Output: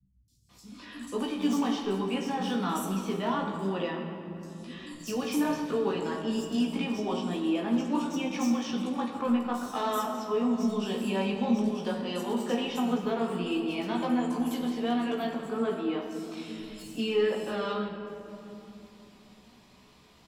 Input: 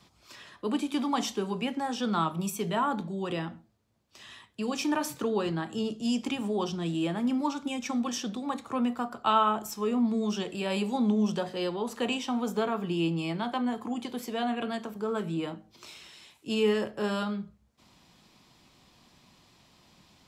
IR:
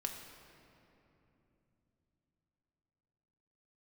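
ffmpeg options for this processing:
-filter_complex "[0:a]asettb=1/sr,asplit=3[s0][s1][s2];[s0]atrim=end=13.334[s3];[s1]atrim=start=13.33:end=14.2,asetpts=PTS-STARTPTS,afade=t=in:d=0.004:c=qsin,afade=t=out:st=0.866:d=0.004:c=qsin,bass=f=250:g=1,treble=f=4000:g=5[s4];[s2]atrim=start=14.196[s5];[s3][s4]acrossfade=d=0.004:c1=hsin:c2=qsin[s6];[s6][s5]acrossfade=d=0.004:c1=qsin:c2=hsin,acrossover=split=750[s7][s8];[s8]volume=39.8,asoftclip=hard,volume=0.0251[s9];[s7][s9]amix=inputs=2:normalize=0,flanger=delay=15.5:depth=2.1:speed=1.3,acrossover=split=160|5300[s10][s11][s12];[s12]adelay=280[s13];[s11]adelay=490[s14];[s10][s14][s13]amix=inputs=3:normalize=0,asplit=2[s15][s16];[s16]alimiter=level_in=1.68:limit=0.0631:level=0:latency=1:release=356,volume=0.596,volume=0.891[s17];[s15][s17]amix=inputs=2:normalize=0[s18];[1:a]atrim=start_sample=2205[s19];[s18][s19]afir=irnorm=-1:irlink=0"

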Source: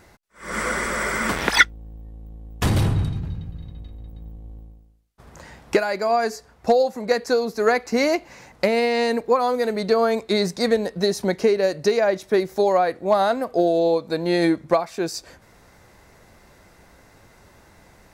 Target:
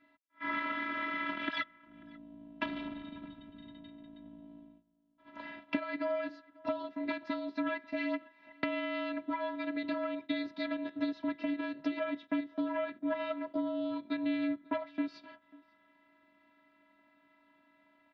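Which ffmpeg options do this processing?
-filter_complex "[0:a]equalizer=f=560:w=2.9:g=-7,aeval=exprs='0.794*(cos(1*acos(clip(val(0)/0.794,-1,1)))-cos(1*PI/2))+0.224*(cos(4*acos(clip(val(0)/0.794,-1,1)))-cos(4*PI/2))+0.112*(cos(5*acos(clip(val(0)/0.794,-1,1)))-cos(5*PI/2))+0.0708*(cos(8*acos(clip(val(0)/0.794,-1,1)))-cos(8*PI/2))':c=same,afftfilt=real='hypot(re,im)*cos(PI*b)':imag='0':win_size=512:overlap=0.75,acompressor=threshold=0.0316:ratio=5,adynamicequalizer=threshold=0.00447:dfrequency=940:dqfactor=1.7:tfrequency=940:tqfactor=1.7:attack=5:release=100:ratio=0.375:range=2.5:mode=cutabove:tftype=bell,agate=range=0.2:threshold=0.00631:ratio=16:detection=peak,highpass=f=160:t=q:w=0.5412,highpass=f=160:t=q:w=1.307,lowpass=f=3500:t=q:w=0.5176,lowpass=f=3500:t=q:w=0.7071,lowpass=f=3500:t=q:w=1.932,afreqshift=-58,asplit=2[s0][s1];[s1]adelay=542.3,volume=0.0708,highshelf=f=4000:g=-12.2[s2];[s0][s2]amix=inputs=2:normalize=0"

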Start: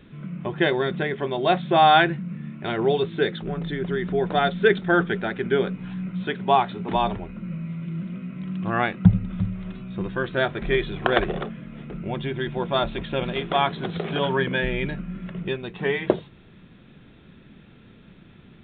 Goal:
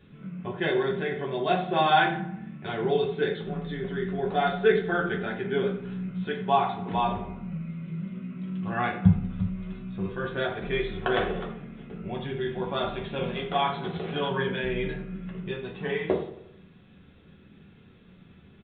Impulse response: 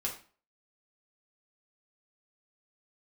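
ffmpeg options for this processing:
-filter_complex "[0:a]asplit=2[s0][s1];[s1]adelay=89,lowpass=f=2600:p=1,volume=0.2,asplit=2[s2][s3];[s3]adelay=89,lowpass=f=2600:p=1,volume=0.54,asplit=2[s4][s5];[s5]adelay=89,lowpass=f=2600:p=1,volume=0.54,asplit=2[s6][s7];[s7]adelay=89,lowpass=f=2600:p=1,volume=0.54,asplit=2[s8][s9];[s9]adelay=89,lowpass=f=2600:p=1,volume=0.54[s10];[s0][s2][s4][s6][s8][s10]amix=inputs=6:normalize=0[s11];[1:a]atrim=start_sample=2205[s12];[s11][s12]afir=irnorm=-1:irlink=0,volume=0.422"

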